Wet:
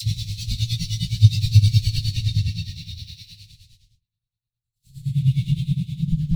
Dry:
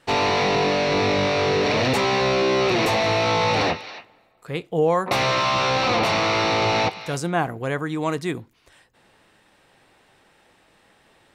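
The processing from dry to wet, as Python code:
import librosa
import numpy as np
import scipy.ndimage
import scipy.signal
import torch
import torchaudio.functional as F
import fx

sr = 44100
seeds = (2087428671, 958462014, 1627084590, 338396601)

p1 = fx.high_shelf(x, sr, hz=4400.0, db=11.5)
p2 = p1 + fx.echo_single(p1, sr, ms=123, db=-8.0, dry=0)
p3 = fx.paulstretch(p2, sr, seeds[0], factor=6.8, window_s=0.25, from_s=3.13)
p4 = fx.leveller(p3, sr, passes=5)
p5 = fx.dispersion(p4, sr, late='lows', ms=51.0, hz=1200.0)
p6 = p5 * (1.0 - 0.79 / 2.0 + 0.79 / 2.0 * np.cos(2.0 * np.pi * 5.4 * (np.arange(len(p5)) / sr)))
p7 = fx.noise_reduce_blind(p6, sr, reduce_db=10)
p8 = scipy.signal.sosfilt(scipy.signal.ellip(3, 1.0, 60, [120.0, 4000.0], 'bandstop', fs=sr, output='sos'), p7)
p9 = fx.bass_treble(p8, sr, bass_db=14, treble_db=-10)
p10 = fx.stretch_vocoder_free(p9, sr, factor=0.56)
y = p10 * librosa.db_to_amplitude(1.5)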